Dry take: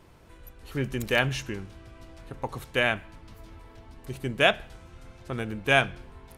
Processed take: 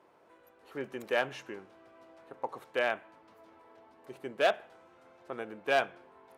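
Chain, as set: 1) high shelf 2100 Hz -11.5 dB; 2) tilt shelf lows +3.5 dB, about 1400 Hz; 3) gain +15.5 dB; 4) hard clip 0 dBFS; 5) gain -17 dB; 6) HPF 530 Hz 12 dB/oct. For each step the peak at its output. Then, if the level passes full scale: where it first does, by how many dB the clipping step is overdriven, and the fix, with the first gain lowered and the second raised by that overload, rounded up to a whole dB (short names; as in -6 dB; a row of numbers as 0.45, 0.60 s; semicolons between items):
-10.0, -8.0, +7.5, 0.0, -17.0, -12.5 dBFS; step 3, 7.5 dB; step 3 +7.5 dB, step 5 -9 dB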